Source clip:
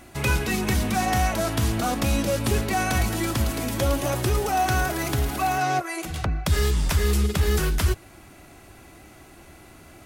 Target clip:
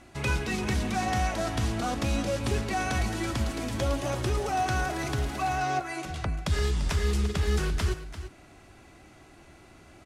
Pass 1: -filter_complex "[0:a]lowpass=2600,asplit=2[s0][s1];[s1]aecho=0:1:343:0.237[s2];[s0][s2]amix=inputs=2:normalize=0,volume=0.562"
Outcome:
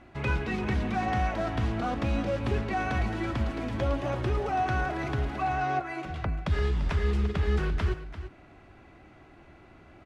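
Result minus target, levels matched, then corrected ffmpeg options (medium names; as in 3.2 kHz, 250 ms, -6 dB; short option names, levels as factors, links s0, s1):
8 kHz band -15.5 dB
-filter_complex "[0:a]lowpass=7700,asplit=2[s0][s1];[s1]aecho=0:1:343:0.237[s2];[s0][s2]amix=inputs=2:normalize=0,volume=0.562"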